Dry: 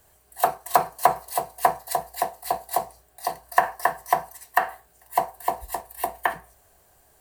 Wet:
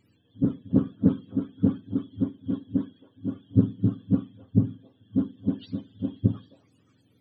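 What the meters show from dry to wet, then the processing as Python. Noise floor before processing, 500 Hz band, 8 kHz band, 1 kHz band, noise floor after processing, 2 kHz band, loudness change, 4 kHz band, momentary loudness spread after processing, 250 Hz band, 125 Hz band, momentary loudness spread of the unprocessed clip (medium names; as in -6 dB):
-60 dBFS, -10.5 dB, under -40 dB, under -30 dB, -65 dBFS, under -25 dB, -1.5 dB, under -10 dB, 10 LU, +21.5 dB, +21.0 dB, 10 LU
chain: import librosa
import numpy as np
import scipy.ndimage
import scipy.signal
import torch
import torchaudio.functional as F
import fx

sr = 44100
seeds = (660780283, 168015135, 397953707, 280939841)

y = fx.octave_mirror(x, sr, pivot_hz=440.0)
y = fx.echo_stepped(y, sr, ms=265, hz=680.0, octaves=1.4, feedback_pct=70, wet_db=-11.0)
y = fx.doppler_dist(y, sr, depth_ms=0.39)
y = y * 10.0 ** (-1.0 / 20.0)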